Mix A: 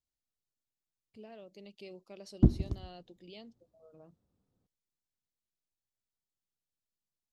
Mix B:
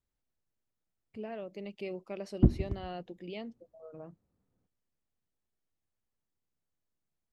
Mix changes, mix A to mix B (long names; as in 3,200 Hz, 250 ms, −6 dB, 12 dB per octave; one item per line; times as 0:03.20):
speech +9.5 dB
master: add high shelf with overshoot 2,900 Hz −9 dB, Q 1.5